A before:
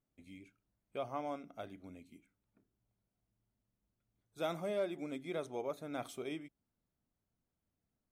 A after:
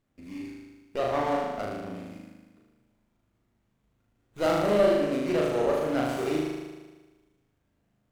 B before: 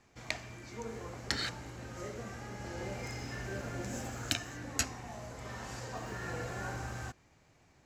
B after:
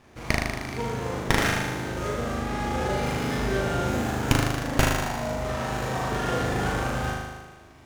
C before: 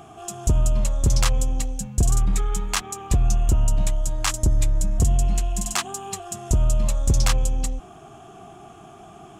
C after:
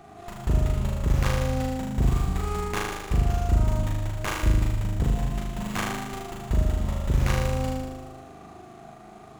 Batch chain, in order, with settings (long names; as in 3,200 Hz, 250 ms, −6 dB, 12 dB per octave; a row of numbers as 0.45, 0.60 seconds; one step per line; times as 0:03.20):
flutter between parallel walls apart 6.6 metres, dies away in 1.3 s
windowed peak hold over 9 samples
loudness normalisation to −27 LKFS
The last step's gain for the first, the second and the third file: +10.5, +10.5, −5.5 decibels